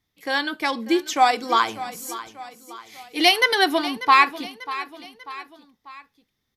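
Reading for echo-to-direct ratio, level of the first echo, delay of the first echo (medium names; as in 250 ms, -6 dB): -14.0 dB, -15.0 dB, 592 ms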